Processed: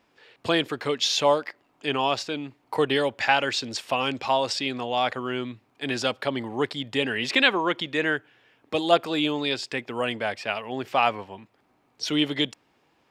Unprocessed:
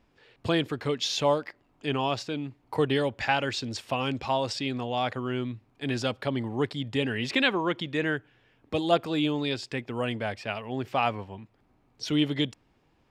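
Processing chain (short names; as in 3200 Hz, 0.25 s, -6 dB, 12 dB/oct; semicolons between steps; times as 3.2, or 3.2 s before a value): HPF 440 Hz 6 dB/oct; gain +5.5 dB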